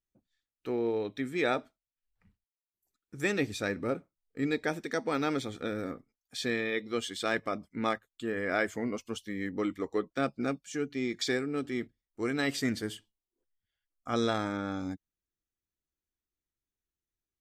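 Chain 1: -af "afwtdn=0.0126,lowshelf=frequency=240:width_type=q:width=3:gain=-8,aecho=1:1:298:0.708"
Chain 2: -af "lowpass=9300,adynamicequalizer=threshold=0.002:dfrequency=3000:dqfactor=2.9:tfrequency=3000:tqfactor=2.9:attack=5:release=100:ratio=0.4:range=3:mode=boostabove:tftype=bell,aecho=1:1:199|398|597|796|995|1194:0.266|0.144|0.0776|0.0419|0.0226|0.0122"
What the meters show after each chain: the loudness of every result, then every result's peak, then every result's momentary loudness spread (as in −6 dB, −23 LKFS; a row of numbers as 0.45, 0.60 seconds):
−29.5, −32.5 LKFS; −11.5, −14.5 dBFS; 8, 13 LU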